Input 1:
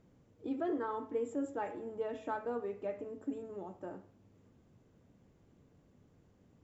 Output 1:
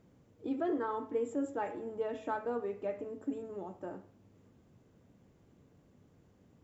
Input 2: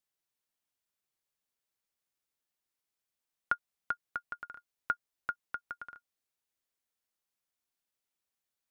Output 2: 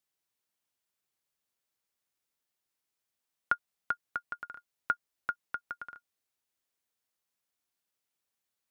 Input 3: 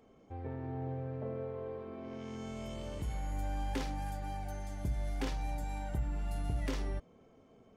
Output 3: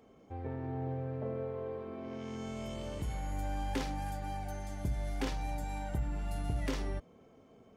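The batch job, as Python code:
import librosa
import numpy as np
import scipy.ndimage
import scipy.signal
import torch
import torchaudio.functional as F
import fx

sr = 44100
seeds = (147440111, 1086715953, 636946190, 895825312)

y = fx.highpass(x, sr, hz=44.0, slope=6)
y = y * librosa.db_to_amplitude(2.0)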